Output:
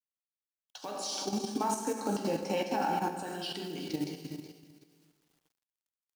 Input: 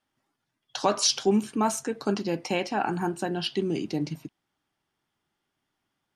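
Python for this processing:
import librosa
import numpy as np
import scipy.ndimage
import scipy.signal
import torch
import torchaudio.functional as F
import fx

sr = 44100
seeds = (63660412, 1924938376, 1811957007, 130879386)

y = fx.rider(x, sr, range_db=10, speed_s=0.5)
y = fx.low_shelf(y, sr, hz=130.0, db=-7.0)
y = fx.comb_fb(y, sr, f0_hz=450.0, decay_s=0.42, harmonics='all', damping=0.0, mix_pct=50)
y = fx.echo_feedback(y, sr, ms=371, feedback_pct=22, wet_db=-12.0)
y = fx.rev_plate(y, sr, seeds[0], rt60_s=1.5, hf_ratio=1.0, predelay_ms=0, drr_db=0.5)
y = fx.quant_companded(y, sr, bits=6)
y = fx.small_body(y, sr, hz=(260.0, 550.0, 820.0), ring_ms=25, db=9, at=(0.91, 3.23))
y = fx.level_steps(y, sr, step_db=9)
y = fx.high_shelf(y, sr, hz=3800.0, db=5.5)
y = y * librosa.db_to_amplitude(-3.0)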